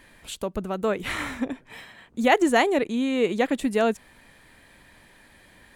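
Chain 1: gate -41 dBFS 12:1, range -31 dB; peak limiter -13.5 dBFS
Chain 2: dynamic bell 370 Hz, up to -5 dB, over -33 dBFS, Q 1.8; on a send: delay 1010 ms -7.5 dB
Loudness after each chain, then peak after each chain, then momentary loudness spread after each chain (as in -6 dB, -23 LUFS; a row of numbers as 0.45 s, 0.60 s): -26.5 LUFS, -26.5 LUFS; -13.5 dBFS, -7.0 dBFS; 12 LU, 13 LU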